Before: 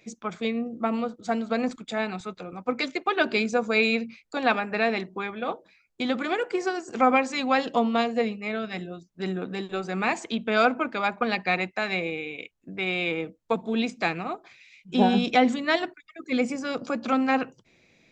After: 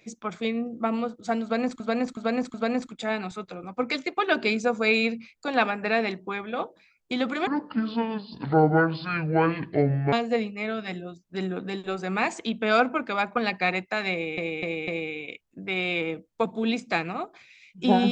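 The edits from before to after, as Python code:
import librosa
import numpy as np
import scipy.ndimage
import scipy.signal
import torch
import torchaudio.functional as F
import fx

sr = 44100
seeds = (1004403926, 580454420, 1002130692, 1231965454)

y = fx.edit(x, sr, fx.repeat(start_s=1.43, length_s=0.37, count=4),
    fx.speed_span(start_s=6.36, length_s=1.62, speed=0.61),
    fx.repeat(start_s=11.98, length_s=0.25, count=4), tone=tone)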